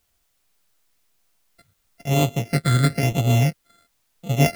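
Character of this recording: a buzz of ramps at a fixed pitch in blocks of 64 samples; phasing stages 8, 1 Hz, lowest notch 780–1600 Hz; a quantiser's noise floor 12-bit, dither triangular

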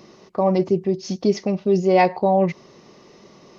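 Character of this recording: noise floor -50 dBFS; spectral tilt -4.5 dB/oct

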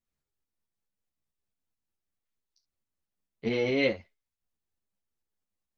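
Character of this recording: tremolo saw up 4.6 Hz, depth 45%; a shimmering, thickened sound

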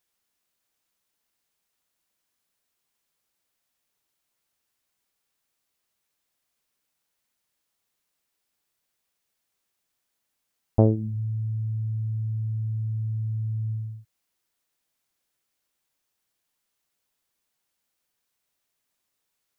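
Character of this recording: noise floor -80 dBFS; spectral tilt -10.0 dB/oct

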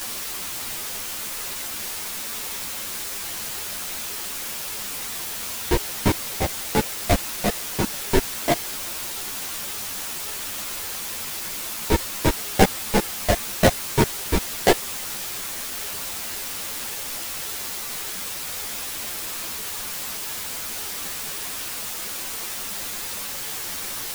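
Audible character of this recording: aliases and images of a low sample rate 1300 Hz, jitter 20%; tremolo triangle 2 Hz, depth 60%; a quantiser's noise floor 6-bit, dither triangular; a shimmering, thickened sound

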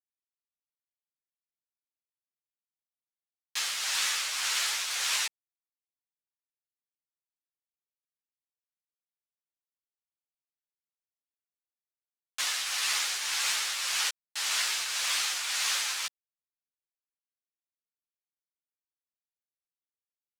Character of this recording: a quantiser's noise floor 8-bit, dither none; tremolo triangle 1.8 Hz, depth 50%; a shimmering, thickened sound

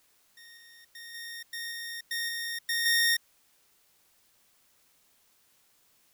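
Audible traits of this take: a buzz of ramps at a fixed pitch in blocks of 8 samples; random-step tremolo, depth 55%; a quantiser's noise floor 12-bit, dither triangular

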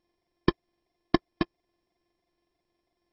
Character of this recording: a buzz of ramps at a fixed pitch in blocks of 128 samples; phasing stages 12, 3 Hz, lowest notch 400–1200 Hz; aliases and images of a low sample rate 1400 Hz, jitter 0%; MP2

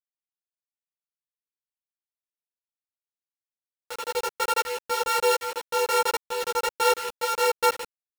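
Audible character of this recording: a buzz of ramps at a fixed pitch in blocks of 32 samples; tremolo saw up 1.3 Hz, depth 90%; a quantiser's noise floor 6-bit, dither none; a shimmering, thickened sound

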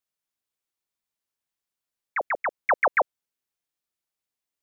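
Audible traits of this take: noise floor -89 dBFS; spectral tilt +6.5 dB/oct

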